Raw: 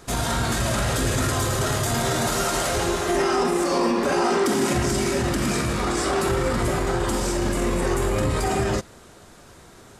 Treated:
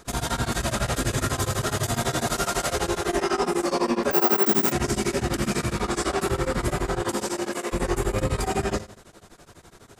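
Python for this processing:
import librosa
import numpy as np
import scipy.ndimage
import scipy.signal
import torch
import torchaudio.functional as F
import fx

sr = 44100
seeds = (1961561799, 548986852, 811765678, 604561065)

y = fx.highpass(x, sr, hz=fx.line((7.0, 110.0), (7.72, 480.0)), slope=12, at=(7.0, 7.72), fade=0.02)
y = fx.rev_gated(y, sr, seeds[0], gate_ms=240, shape='falling', drr_db=12.0)
y = fx.resample_bad(y, sr, factor=2, down='none', up='zero_stuff', at=(4.11, 4.72))
y = y * np.abs(np.cos(np.pi * 12.0 * np.arange(len(y)) / sr))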